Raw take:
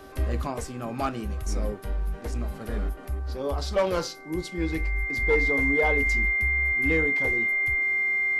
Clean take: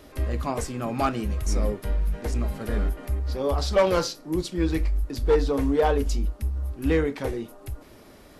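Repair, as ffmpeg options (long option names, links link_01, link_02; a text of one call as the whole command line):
ffmpeg -i in.wav -af "bandreject=frequency=387.5:width_type=h:width=4,bandreject=frequency=775:width_type=h:width=4,bandreject=frequency=1162.5:width_type=h:width=4,bandreject=frequency=1550:width_type=h:width=4,bandreject=frequency=2100:width=30,asetnsamples=nb_out_samples=441:pad=0,asendcmd='0.47 volume volume 4dB',volume=0dB" out.wav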